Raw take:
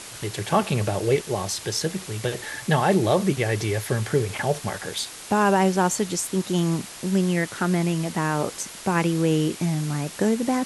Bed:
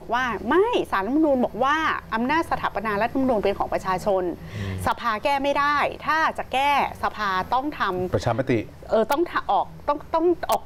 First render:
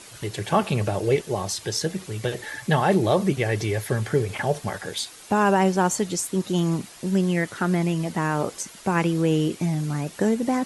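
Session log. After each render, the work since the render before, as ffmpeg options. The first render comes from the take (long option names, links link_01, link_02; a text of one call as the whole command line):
ffmpeg -i in.wav -af "afftdn=noise_reduction=8:noise_floor=-40" out.wav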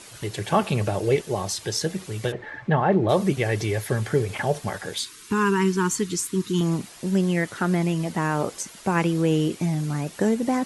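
ffmpeg -i in.wav -filter_complex "[0:a]asplit=3[link_01][link_02][link_03];[link_01]afade=type=out:start_time=2.31:duration=0.02[link_04];[link_02]lowpass=1800,afade=type=in:start_time=2.31:duration=0.02,afade=type=out:start_time=3.08:duration=0.02[link_05];[link_03]afade=type=in:start_time=3.08:duration=0.02[link_06];[link_04][link_05][link_06]amix=inputs=3:normalize=0,asettb=1/sr,asplit=3[link_07][link_08][link_09];[link_07]atrim=end=4.984[link_10];[link_08]atrim=start=4.98:end=6.61,asetpts=PTS-STARTPTS,afade=type=in:duration=0.004:curve=qsin,afade=type=out:start_time=1.626:duration=0.004:curve=qsin,asuperstop=centerf=650:order=8:qfactor=1.3[link_11];[link_09]atrim=start=6.606[link_12];[link_10][link_11]acrossfade=duration=0.004:curve1=hsin:curve2=qsin[link_13];[link_13][link_12]acrossfade=duration=0.004:curve1=qsin:curve2=hsin" out.wav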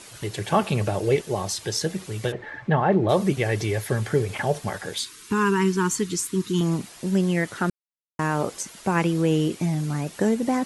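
ffmpeg -i in.wav -filter_complex "[0:a]asplit=3[link_01][link_02][link_03];[link_01]atrim=end=7.7,asetpts=PTS-STARTPTS,afade=type=out:start_time=7.696:duration=0.004:curve=hsin[link_04];[link_02]atrim=start=7.7:end=8.19,asetpts=PTS-STARTPTS,volume=0[link_05];[link_03]atrim=start=8.19,asetpts=PTS-STARTPTS,afade=type=in:duration=0.004:curve=hsin[link_06];[link_04][link_05][link_06]concat=n=3:v=0:a=1" out.wav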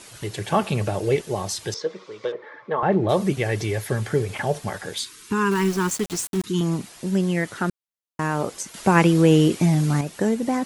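ffmpeg -i in.wav -filter_complex "[0:a]asettb=1/sr,asplit=3[link_01][link_02][link_03];[link_01]atrim=end=1.744[link_04];[link_02]atrim=start=1.74:end=2.83,asetpts=PTS-STARTPTS,afade=type=in:duration=0.004:curve=qsin,afade=type=out:start_time=1.086:duration=0.004:curve=qsin,highpass=440,equalizer=frequency=480:width_type=q:width=4:gain=7,equalizer=frequency=750:width_type=q:width=4:gain=-9,equalizer=frequency=1100:width_type=q:width=4:gain=6,equalizer=frequency=1700:width_type=q:width=4:gain=-7,equalizer=frequency=2800:width_type=q:width=4:gain=-9,equalizer=frequency=4200:width_type=q:width=4:gain=-5,lowpass=frequency=4700:width=0.5412,lowpass=frequency=4700:width=1.3066[link_05];[link_03]atrim=start=2.826[link_06];[link_04][link_05]acrossfade=duration=0.004:curve1=hsin:curve2=qsin[link_07];[link_07][link_06]acrossfade=duration=0.004:curve1=qsin:curve2=hsin,asettb=1/sr,asplit=3[link_08][link_09][link_10];[link_08]atrim=end=5.514[link_11];[link_09]atrim=start=5.51:end=6.44,asetpts=PTS-STARTPTS,afade=type=in:duration=0.004:curve=qsin,afade=type=out:start_time=0.926:duration=0.004:curve=qsin,aeval=exprs='val(0)*gte(abs(val(0)),0.0355)':channel_layout=same[link_12];[link_10]atrim=start=6.436[link_13];[link_11][link_12]acrossfade=duration=0.004:curve1=hsin:curve2=qsin[link_14];[link_14][link_13]acrossfade=duration=0.004:curve1=qsin:curve2=hsin,asplit=3[link_15][link_16][link_17];[link_15]atrim=end=8.742[link_18];[link_16]atrim=start=8.738:end=10.012,asetpts=PTS-STARTPTS,volume=6dB[link_19];[link_17]atrim=start=10.008[link_20];[link_18][link_19]acrossfade=duration=0.004:curve1=hsin:curve2=hsin[link_21];[link_21][link_20]acrossfade=duration=0.004:curve1=hsin:curve2=hsin" out.wav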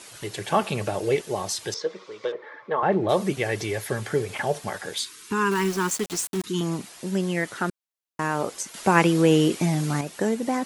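ffmpeg -i in.wav -af "lowshelf=frequency=170:gain=-10.5" out.wav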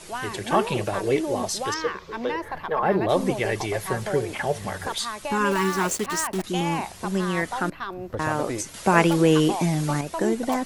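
ffmpeg -i in.wav -i bed.wav -filter_complex "[1:a]volume=-9dB[link_01];[0:a][link_01]amix=inputs=2:normalize=0" out.wav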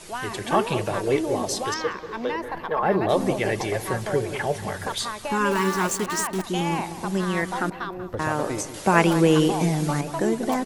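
ffmpeg -i in.wav -filter_complex "[0:a]asplit=2[link_01][link_02];[link_02]adelay=188,lowpass=frequency=1500:poles=1,volume=-11dB,asplit=2[link_03][link_04];[link_04]adelay=188,lowpass=frequency=1500:poles=1,volume=0.48,asplit=2[link_05][link_06];[link_06]adelay=188,lowpass=frequency=1500:poles=1,volume=0.48,asplit=2[link_07][link_08];[link_08]adelay=188,lowpass=frequency=1500:poles=1,volume=0.48,asplit=2[link_09][link_10];[link_10]adelay=188,lowpass=frequency=1500:poles=1,volume=0.48[link_11];[link_01][link_03][link_05][link_07][link_09][link_11]amix=inputs=6:normalize=0" out.wav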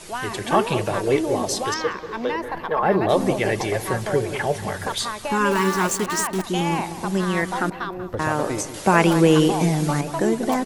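ffmpeg -i in.wav -af "volume=2.5dB,alimiter=limit=-1dB:level=0:latency=1" out.wav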